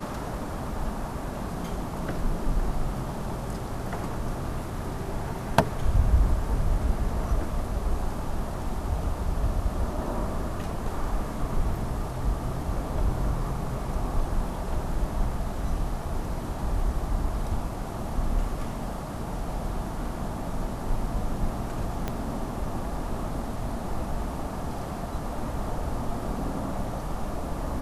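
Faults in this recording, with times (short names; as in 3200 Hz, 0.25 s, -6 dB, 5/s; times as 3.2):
22.08 pop -15 dBFS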